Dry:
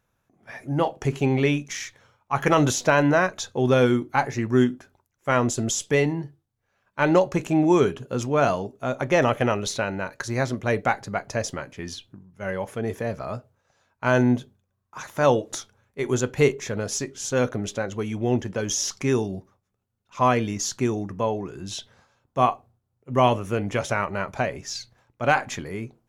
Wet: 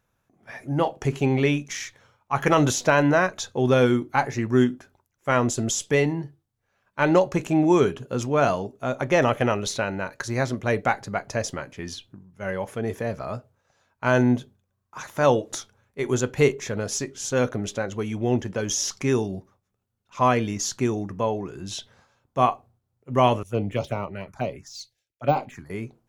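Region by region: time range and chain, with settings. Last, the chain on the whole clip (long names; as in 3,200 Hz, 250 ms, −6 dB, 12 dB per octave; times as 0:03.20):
0:23.43–0:25.70: de-essing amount 90% + phaser swept by the level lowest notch 150 Hz, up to 1,700 Hz, full sweep at −22 dBFS + multiband upward and downward expander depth 100%
whole clip: no processing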